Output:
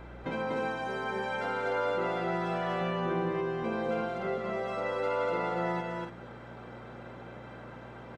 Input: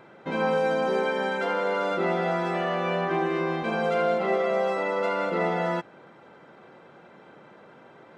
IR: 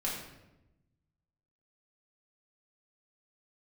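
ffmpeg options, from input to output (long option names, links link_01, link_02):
-filter_complex "[0:a]asettb=1/sr,asplit=3[link_01][link_02][link_03];[link_01]atrim=end=2.814[link_04];[link_02]atrim=start=2.81:end=4.38,asetpts=PTS-STARTPTS,afade=type=in:duration=0.004:curve=qsin,afade=type=out:start_time=1.566:duration=0.004:curve=qsin,lowshelf=frequency=450:gain=10[link_05];[link_03]atrim=start=4.376[link_06];[link_04][link_05]acrossfade=duration=0.004:curve1=hsin:curve2=qsin[link_07];[link_07][link_06]acrossfade=duration=0.004:curve1=qsin:curve2=hsin,acompressor=threshold=-34dB:ratio=4,aeval=exprs='val(0)+0.00398*(sin(2*PI*60*n/s)+sin(2*PI*2*60*n/s)/2+sin(2*PI*3*60*n/s)/3+sin(2*PI*4*60*n/s)/4+sin(2*PI*5*60*n/s)/5)':channel_layout=same,aecho=1:1:242|288.6:0.794|0.398,asplit=2[link_08][link_09];[1:a]atrim=start_sample=2205[link_10];[link_09][link_10]afir=irnorm=-1:irlink=0,volume=-18dB[link_11];[link_08][link_11]amix=inputs=2:normalize=0"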